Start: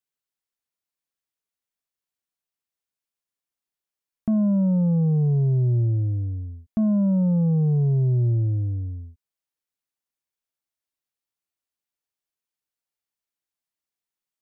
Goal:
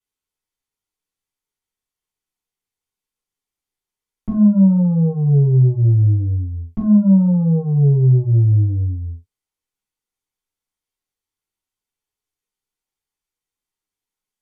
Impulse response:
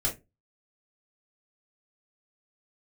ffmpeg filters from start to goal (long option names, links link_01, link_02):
-filter_complex "[1:a]atrim=start_sample=2205,atrim=end_sample=3087,asetrate=27783,aresample=44100[link_01];[0:a][link_01]afir=irnorm=-1:irlink=0,volume=-6.5dB"